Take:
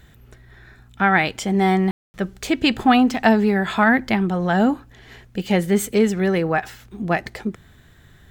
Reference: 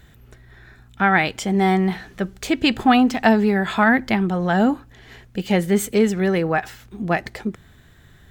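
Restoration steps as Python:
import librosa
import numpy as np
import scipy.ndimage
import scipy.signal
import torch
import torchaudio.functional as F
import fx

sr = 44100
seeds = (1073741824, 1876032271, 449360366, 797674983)

y = fx.fix_ambience(x, sr, seeds[0], print_start_s=7.72, print_end_s=8.22, start_s=1.91, end_s=2.14)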